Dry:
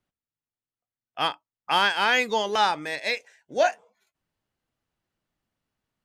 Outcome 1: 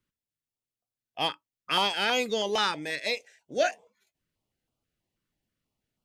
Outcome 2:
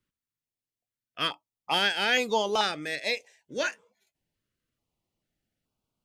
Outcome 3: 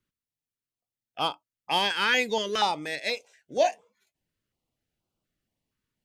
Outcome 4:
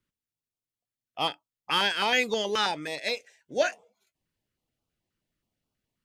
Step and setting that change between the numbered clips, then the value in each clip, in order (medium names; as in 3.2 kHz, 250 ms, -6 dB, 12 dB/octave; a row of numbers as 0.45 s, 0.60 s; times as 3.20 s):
step-sequenced notch, rate: 6.2 Hz, 2.3 Hz, 4.2 Hz, 9.4 Hz